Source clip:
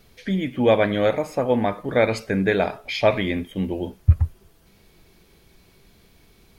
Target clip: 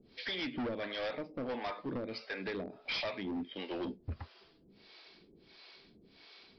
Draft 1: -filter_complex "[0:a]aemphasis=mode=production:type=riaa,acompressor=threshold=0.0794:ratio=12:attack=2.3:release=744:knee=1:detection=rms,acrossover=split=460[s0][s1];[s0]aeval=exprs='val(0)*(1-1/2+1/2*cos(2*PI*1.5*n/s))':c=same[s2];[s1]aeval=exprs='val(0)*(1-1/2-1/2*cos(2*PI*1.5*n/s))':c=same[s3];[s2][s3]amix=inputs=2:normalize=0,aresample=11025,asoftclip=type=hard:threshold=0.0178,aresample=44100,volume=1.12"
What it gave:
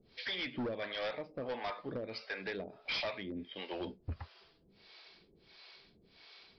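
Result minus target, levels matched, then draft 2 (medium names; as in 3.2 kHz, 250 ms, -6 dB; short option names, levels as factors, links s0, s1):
250 Hz band -3.5 dB
-filter_complex "[0:a]aemphasis=mode=production:type=riaa,acompressor=threshold=0.0794:ratio=12:attack=2.3:release=744:knee=1:detection=rms,equalizer=f=270:w=1.3:g=8,acrossover=split=460[s0][s1];[s0]aeval=exprs='val(0)*(1-1/2+1/2*cos(2*PI*1.5*n/s))':c=same[s2];[s1]aeval=exprs='val(0)*(1-1/2-1/2*cos(2*PI*1.5*n/s))':c=same[s3];[s2][s3]amix=inputs=2:normalize=0,aresample=11025,asoftclip=type=hard:threshold=0.0178,aresample=44100,volume=1.12"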